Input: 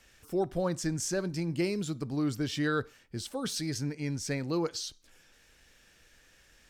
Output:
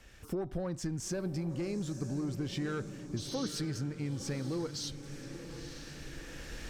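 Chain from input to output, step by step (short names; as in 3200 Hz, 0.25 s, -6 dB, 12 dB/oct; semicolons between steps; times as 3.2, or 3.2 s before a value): recorder AGC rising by 6.6 dB/s; tube stage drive 25 dB, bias 0.2; tilt -1.5 dB/oct; compressor, threshold -36 dBFS, peak gain reduction 10 dB; on a send: diffused feedback echo 0.958 s, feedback 55%, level -10 dB; on the sum: spectral repair 3.2–3.47, 2300–6500 Hz after; gain +3 dB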